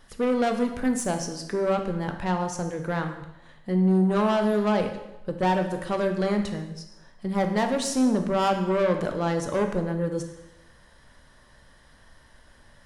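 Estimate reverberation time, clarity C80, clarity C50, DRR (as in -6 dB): 0.95 s, 10.5 dB, 8.0 dB, 5.0 dB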